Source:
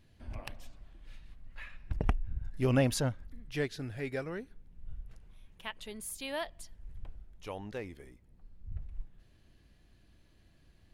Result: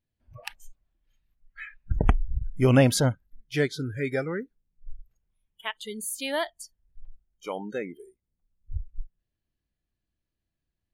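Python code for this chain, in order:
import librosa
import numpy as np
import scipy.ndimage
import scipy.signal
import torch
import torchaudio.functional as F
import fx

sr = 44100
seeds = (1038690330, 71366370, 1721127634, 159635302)

y = fx.noise_reduce_blind(x, sr, reduce_db=30)
y = y * 10.0 ** (8.5 / 20.0)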